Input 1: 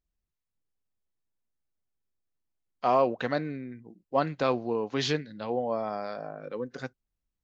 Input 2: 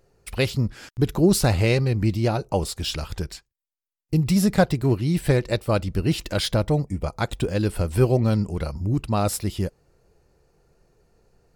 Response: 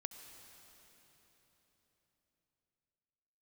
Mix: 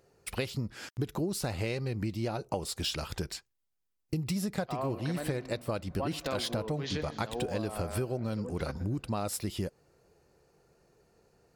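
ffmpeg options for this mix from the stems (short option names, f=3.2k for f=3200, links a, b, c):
-filter_complex "[0:a]adelay=1850,volume=-5.5dB,asplit=3[a][b][c];[b]volume=-5.5dB[d];[c]volume=-14.5dB[e];[1:a]highpass=f=150:p=1,volume=-1dB[f];[2:a]atrim=start_sample=2205[g];[d][g]afir=irnorm=-1:irlink=0[h];[e]aecho=0:1:120|240|360|480|600|720|840|960|1080|1200:1|0.6|0.36|0.216|0.13|0.0778|0.0467|0.028|0.0168|0.0101[i];[a][f][h][i]amix=inputs=4:normalize=0,acompressor=threshold=-29dB:ratio=12"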